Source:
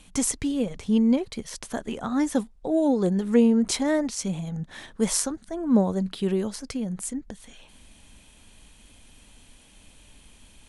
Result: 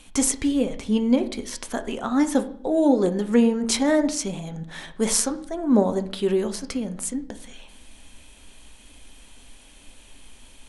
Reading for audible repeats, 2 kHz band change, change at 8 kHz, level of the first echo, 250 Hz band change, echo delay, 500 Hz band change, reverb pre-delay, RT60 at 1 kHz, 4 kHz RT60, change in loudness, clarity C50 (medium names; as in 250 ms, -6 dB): no echo, +4.0 dB, +3.5 dB, no echo, +1.5 dB, no echo, +3.5 dB, 7 ms, 0.60 s, 0.55 s, +2.0 dB, 14.5 dB